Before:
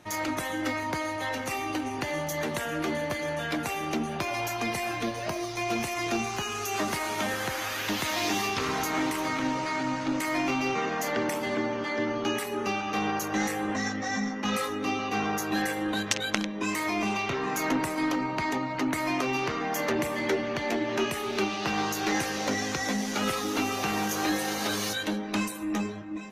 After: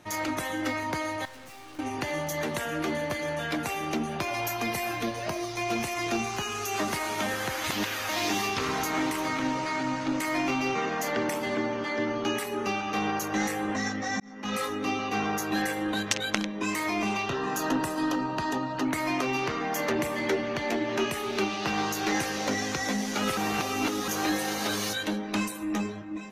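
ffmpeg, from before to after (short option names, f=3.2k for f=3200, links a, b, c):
-filter_complex "[0:a]asettb=1/sr,asplit=3[a][b][c];[a]atrim=end=1.254[d];[b]atrim=start=1.25:end=1.79,asetpts=PTS-STARTPTS,afade=t=in:d=0.004:c=qsin,afade=t=out:st=0.536:d=0.004:c=qsin,aeval=exprs='(tanh(200*val(0)+0.6)-tanh(0.6))/200':c=same[e];[c]atrim=start=1.786[f];[d][e]acrossfade=d=0.004:c1=hsin:c2=qsin[g];[g][f]acrossfade=d=0.004:c1=qsin:c2=hsin,asettb=1/sr,asplit=3[h][i][j];[h]atrim=end=4.454[k];[i]atrim=start=4.45:end=5.06,asetpts=PTS-STARTPTS,afade=t=in:d=0.004:c=qsin,afade=t=out:st=0.606:d=0.004:c=qsin,equalizer=f=13k:t=o:w=0.27:g=9.5[l];[j]atrim=start=5.056[m];[k][l]acrossfade=d=0.004:c1=hsin:c2=qsin[n];[n][m]acrossfade=d=0.004:c1=qsin:c2=hsin,asettb=1/sr,asplit=3[o][p][q];[o]atrim=end=17.234[r];[p]atrim=start=17.23:end=18.85,asetpts=PTS-STARTPTS,afade=t=in:d=0.004:c=qsin,afade=t=out:st=1.616:d=0.004:c=qsin,asuperstop=centerf=2200:order=4:qfactor=4.8[s];[q]atrim=start=18.846[t];[r][s]acrossfade=d=0.004:c1=hsin:c2=qsin[u];[u][t]acrossfade=d=0.004:c1=qsin:c2=hsin,asplit=6[v][w][x][y][z][aa];[v]atrim=end=7.642[ab];[w]atrim=start=7.638:end=8.092,asetpts=PTS-STARTPTS,areverse[ac];[x]atrim=start=8.088:end=14.2,asetpts=PTS-STARTPTS,afade=t=out:st=6.108:d=0.004:c=hsin[ad];[y]atrim=start=14.2:end=23.372,asetpts=PTS-STARTPTS,afade=t=in:d=0.44[ae];[z]atrim=start=23.368:end=24.082,asetpts=PTS-STARTPTS,areverse[af];[aa]atrim=start=24.078[ag];[ab][ac]acrossfade=d=0.004:c1=hsin:c2=hsin[ah];[ad][ae]concat=n=2:v=0:a=1[ai];[ah][ai]acrossfade=d=0.004:c1=hsin:c2=hsin[aj];[aj][af]acrossfade=d=0.004:c1=hsin:c2=hsin[ak];[ak][ag]acrossfade=d=0.004:c1=hsin:c2=hsin"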